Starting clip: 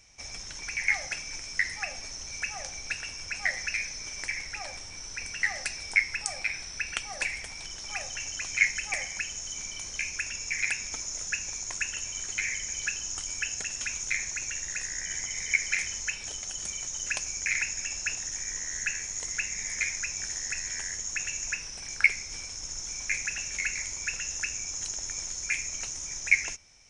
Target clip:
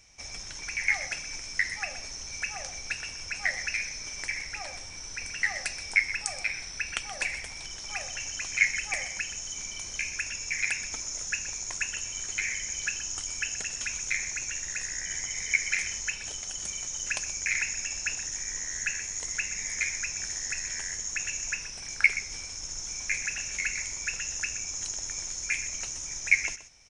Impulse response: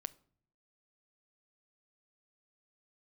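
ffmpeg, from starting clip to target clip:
-af "aecho=1:1:126:0.211"

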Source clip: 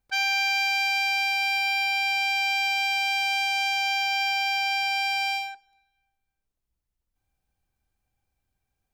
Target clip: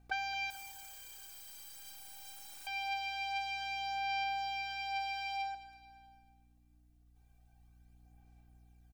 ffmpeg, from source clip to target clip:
ffmpeg -i in.wav -filter_complex "[0:a]equalizer=frequency=670:width_type=o:width=0.39:gain=10,aecho=1:1:2.6:0.87,alimiter=limit=-21dB:level=0:latency=1:release=480,acompressor=threshold=-38dB:ratio=5,aeval=exprs='val(0)+0.000447*(sin(2*PI*60*n/s)+sin(2*PI*2*60*n/s)/2+sin(2*PI*3*60*n/s)/3+sin(2*PI*4*60*n/s)/4+sin(2*PI*5*60*n/s)/5)':channel_layout=same,asettb=1/sr,asplit=3[link_01][link_02][link_03];[link_01]atrim=end=0.504[link_04];[link_02]atrim=start=0.5:end=2.67,asetpts=PTS-STARTPTS,afade=type=in:duration=0.004:curve=qsin,afade=type=out:start_time=2.166:duration=0.004:curve=qsin,aeval=exprs='(mod(237*val(0)+1,2)-1)/237':channel_layout=same[link_05];[link_03]atrim=start=2.666[link_06];[link_04][link_05]acrossfade=duration=0.004:curve1=hsin:curve2=qsin[link_07];[link_07][link_06]acrossfade=duration=0.004:curve1=qsin:curve2=hsin,aphaser=in_gain=1:out_gain=1:delay=3.9:decay=0.38:speed=0.24:type=sinusoidal,aecho=1:1:216|432|648|864:0.178|0.0818|0.0376|0.0173" out.wav

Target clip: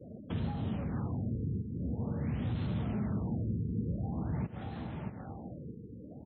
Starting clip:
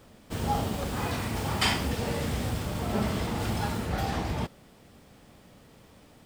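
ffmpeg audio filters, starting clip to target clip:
ffmpeg -i in.wav -filter_complex "[0:a]afftfilt=real='re*gte(hypot(re,im),0.00501)':imag='im*gte(hypot(re,im),0.00501)':win_size=1024:overlap=0.75,highshelf=frequency=5600:gain=8.5,asplit=2[link_01][link_02];[link_02]adelay=633,lowpass=frequency=3500:poles=1,volume=-17dB,asplit=2[link_03][link_04];[link_04]adelay=633,lowpass=frequency=3500:poles=1,volume=0.45,asplit=2[link_05][link_06];[link_06]adelay=633,lowpass=frequency=3500:poles=1,volume=0.45,asplit=2[link_07][link_08];[link_08]adelay=633,lowpass=frequency=3500:poles=1,volume=0.45[link_09];[link_01][link_03][link_05][link_07][link_09]amix=inputs=5:normalize=0,acompressor=threshold=-34dB:ratio=6,asoftclip=type=hard:threshold=-34.5dB,highpass=110,acrossover=split=270[link_10][link_11];[link_11]acompressor=threshold=-53dB:ratio=6[link_12];[link_10][link_12]amix=inputs=2:normalize=0,lowshelf=frequency=190:gain=4.5,afftfilt=real='re*lt(b*sr/1024,480*pow(4300/480,0.5+0.5*sin(2*PI*0.47*pts/sr)))':imag='im*lt(b*sr/1024,480*pow(4300/480,0.5+0.5*sin(2*PI*0.47*pts/sr)))':win_size=1024:overlap=0.75,volume=7.5dB" out.wav

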